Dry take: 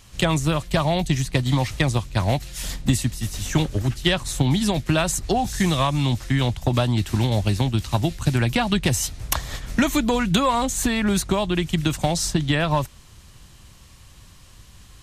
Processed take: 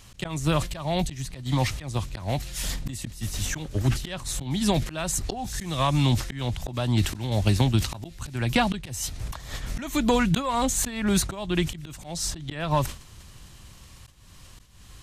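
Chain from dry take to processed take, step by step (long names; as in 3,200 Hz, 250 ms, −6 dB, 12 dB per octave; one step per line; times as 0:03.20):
volume swells 319 ms
level that may fall only so fast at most 130 dB per second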